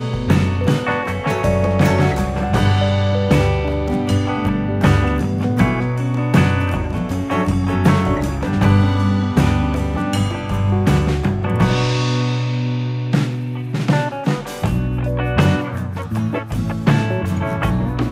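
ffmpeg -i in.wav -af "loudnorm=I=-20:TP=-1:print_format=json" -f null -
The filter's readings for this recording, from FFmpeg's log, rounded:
"input_i" : "-18.3",
"input_tp" : "-2.0",
"input_lra" : "2.5",
"input_thresh" : "-28.3",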